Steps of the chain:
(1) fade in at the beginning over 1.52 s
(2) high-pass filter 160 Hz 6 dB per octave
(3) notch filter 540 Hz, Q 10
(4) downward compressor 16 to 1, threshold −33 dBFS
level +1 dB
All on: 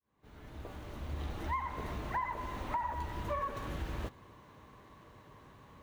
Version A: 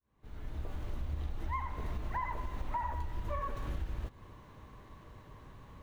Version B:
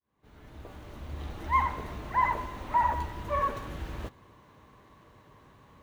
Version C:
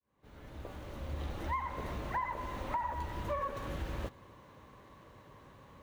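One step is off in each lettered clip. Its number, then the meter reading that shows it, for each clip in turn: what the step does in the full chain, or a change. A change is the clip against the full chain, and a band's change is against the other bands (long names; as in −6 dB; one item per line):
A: 2, change in crest factor −3.0 dB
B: 4, average gain reduction 2.0 dB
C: 3, 500 Hz band +2.0 dB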